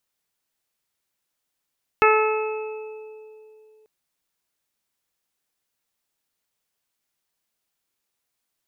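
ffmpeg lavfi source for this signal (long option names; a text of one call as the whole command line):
ffmpeg -f lavfi -i "aevalsrc='0.158*pow(10,-3*t/2.95)*sin(2*PI*433*t)+0.112*pow(10,-3*t/1.94)*sin(2*PI*866*t)+0.168*pow(10,-3*t/1.28)*sin(2*PI*1299*t)+0.0631*pow(10,-3*t/0.82)*sin(2*PI*1732*t)+0.0631*pow(10,-3*t/1.03)*sin(2*PI*2165*t)+0.1*pow(10,-3*t/1.83)*sin(2*PI*2598*t)':duration=1.84:sample_rate=44100" out.wav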